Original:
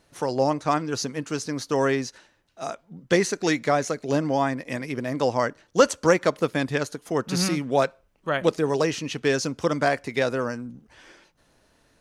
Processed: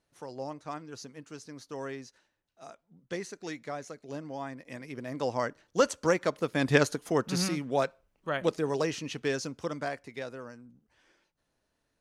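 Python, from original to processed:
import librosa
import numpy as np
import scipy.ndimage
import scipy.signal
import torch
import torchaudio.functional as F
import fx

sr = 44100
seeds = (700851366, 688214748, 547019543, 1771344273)

y = fx.gain(x, sr, db=fx.line((4.3, -16.0), (5.39, -7.0), (6.5, -7.0), (6.75, 3.5), (7.49, -6.5), (9.12, -6.5), (10.41, -16.5)))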